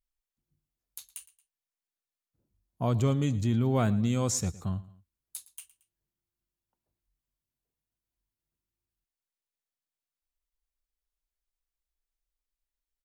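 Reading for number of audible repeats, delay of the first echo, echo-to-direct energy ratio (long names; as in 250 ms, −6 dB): 2, 113 ms, −18.5 dB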